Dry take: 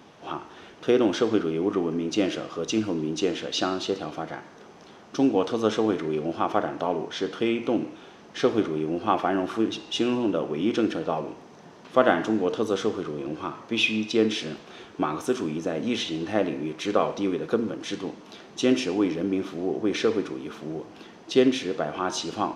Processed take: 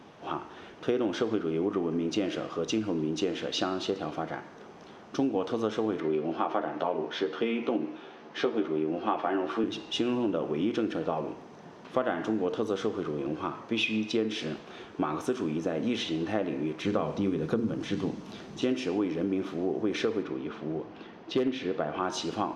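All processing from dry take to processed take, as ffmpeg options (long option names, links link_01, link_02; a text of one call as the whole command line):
ffmpeg -i in.wav -filter_complex "[0:a]asettb=1/sr,asplit=3[link_01][link_02][link_03];[link_01]atrim=end=6.004[link_04];[link_02]atrim=start=6:end=9.64,asetpts=PTS-STARTPTS,afade=type=in:duration=0.004:curve=qsin,afade=type=out:start_time=3.636:duration=0.004:curve=qsin,acrossover=split=190 5700:gain=0.224 1 0.2[link_05][link_06][link_07];[link_05][link_06][link_07]amix=inputs=3:normalize=0,asplit=2[link_08][link_09];[link_09]adelay=13,volume=-4.5dB[link_10];[link_08][link_10]amix=inputs=2:normalize=0,atrim=end_sample=160524[link_11];[link_03]atrim=start=9.636[link_12];[link_04][link_11]acrossfade=duration=0.004:curve1=hsin:curve2=qsin[link_13];[link_13][link_12]acrossfade=duration=0.004:curve1=qsin:curve2=hsin,asettb=1/sr,asplit=3[link_14][link_15][link_16];[link_14]atrim=end=16.814[link_17];[link_15]atrim=start=16.81:end=18.62,asetpts=PTS-STARTPTS,afade=type=in:duration=0.004:curve=qsin,afade=type=out:start_time=1.806:duration=0.004:curve=qsin,bass=frequency=250:gain=11,treble=frequency=4000:gain=7,bandreject=frequency=60:width_type=h:width=6,bandreject=frequency=120:width_type=h:width=6,bandreject=frequency=180:width_type=h:width=6,bandreject=frequency=240:width_type=h:width=6,bandreject=frequency=300:width_type=h:width=6,bandreject=frequency=360:width_type=h:width=6,bandreject=frequency=420:width_type=h:width=6,acrossover=split=3100[link_18][link_19];[link_19]acompressor=threshold=-44dB:ratio=4:attack=1:release=60[link_20];[link_18][link_20]amix=inputs=2:normalize=0[link_21];[link_16]atrim=start=18.616[link_22];[link_17][link_21]acrossfade=duration=0.004:curve1=hsin:curve2=qsin[link_23];[link_23][link_22]acrossfade=duration=0.004:curve1=qsin:curve2=hsin,asettb=1/sr,asplit=3[link_24][link_25][link_26];[link_24]atrim=end=20.234[link_27];[link_25]atrim=start=20.23:end=22.03,asetpts=PTS-STARTPTS,afade=type=in:duration=0.004:curve=qsin,afade=type=out:start_time=1.796:duration=0.004:curve=qsin,lowpass=4300,asoftclip=type=hard:threshold=-12.5dB[link_28];[link_26]atrim=start=22.026[link_29];[link_27][link_28]acrossfade=duration=0.004:curve1=hsin:curve2=qsin[link_30];[link_30][link_29]acrossfade=duration=0.004:curve1=qsin:curve2=hsin,highshelf=frequency=4200:gain=-7.5,acompressor=threshold=-25dB:ratio=4" out.wav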